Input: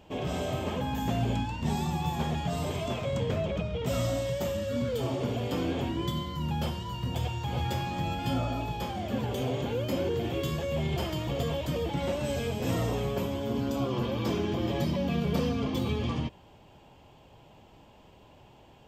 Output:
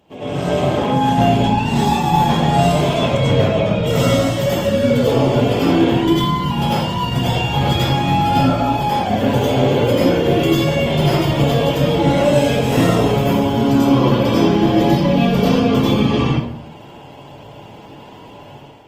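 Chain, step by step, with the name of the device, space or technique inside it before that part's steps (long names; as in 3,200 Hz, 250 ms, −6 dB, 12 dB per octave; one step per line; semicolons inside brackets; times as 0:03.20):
far-field microphone of a smart speaker (convolution reverb RT60 0.65 s, pre-delay 85 ms, DRR −9 dB; high-pass filter 110 Hz 12 dB per octave; automatic gain control gain up to 8.5 dB; Opus 24 kbit/s 48,000 Hz)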